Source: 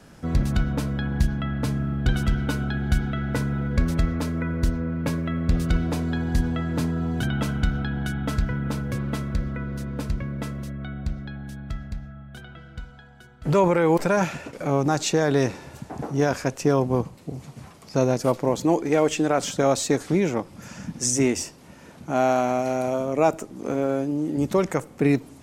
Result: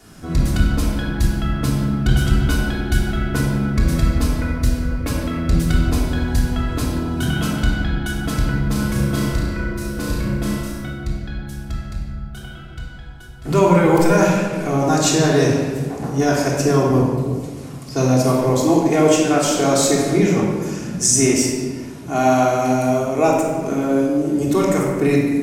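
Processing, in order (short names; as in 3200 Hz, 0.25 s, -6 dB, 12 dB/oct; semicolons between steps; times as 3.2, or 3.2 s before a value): high shelf 5100 Hz +10 dB; 8.72–10.81 flutter echo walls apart 5.9 m, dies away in 0.65 s; shoebox room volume 1700 m³, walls mixed, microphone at 3.3 m; gain -1 dB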